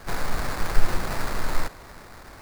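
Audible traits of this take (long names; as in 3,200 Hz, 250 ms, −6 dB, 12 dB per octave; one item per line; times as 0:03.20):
aliases and images of a low sample rate 3,100 Hz, jitter 20%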